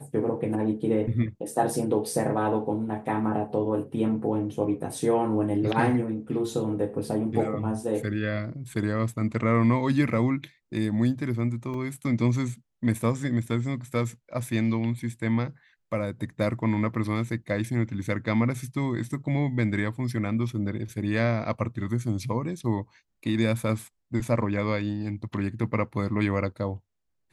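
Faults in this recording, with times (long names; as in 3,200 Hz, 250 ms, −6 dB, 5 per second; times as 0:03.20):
0:11.74: drop-out 2.3 ms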